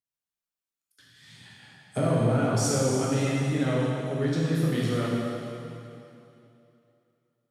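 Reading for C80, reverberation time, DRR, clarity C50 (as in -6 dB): -1.0 dB, 2.8 s, -5.5 dB, -2.5 dB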